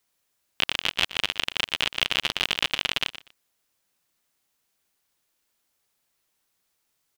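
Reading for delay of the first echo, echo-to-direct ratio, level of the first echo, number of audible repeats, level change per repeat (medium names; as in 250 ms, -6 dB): 121 ms, -14.5 dB, -14.5 dB, 2, -15.0 dB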